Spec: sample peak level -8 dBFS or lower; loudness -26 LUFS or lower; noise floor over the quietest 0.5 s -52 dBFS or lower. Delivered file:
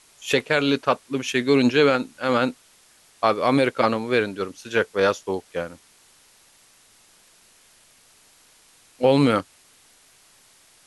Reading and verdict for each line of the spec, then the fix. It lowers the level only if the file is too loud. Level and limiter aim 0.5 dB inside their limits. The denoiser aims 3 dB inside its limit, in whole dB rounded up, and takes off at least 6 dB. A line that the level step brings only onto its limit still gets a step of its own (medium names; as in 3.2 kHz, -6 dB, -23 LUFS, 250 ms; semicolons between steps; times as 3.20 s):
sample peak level -5.0 dBFS: fail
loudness -22.0 LUFS: fail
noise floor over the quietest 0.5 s -56 dBFS: pass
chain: trim -4.5 dB